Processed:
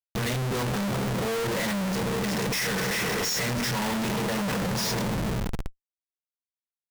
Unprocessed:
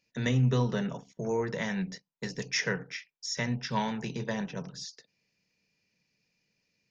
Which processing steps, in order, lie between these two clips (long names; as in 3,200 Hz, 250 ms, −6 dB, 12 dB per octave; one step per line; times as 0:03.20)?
coupled-rooms reverb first 0.23 s, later 4.6 s, from −21 dB, DRR −3 dB
comparator with hysteresis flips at −43 dBFS
level +1.5 dB